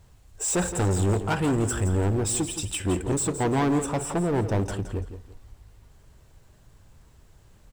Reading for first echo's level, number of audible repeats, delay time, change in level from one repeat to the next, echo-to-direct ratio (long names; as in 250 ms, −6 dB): −11.0 dB, 2, 169 ms, −11.0 dB, −10.5 dB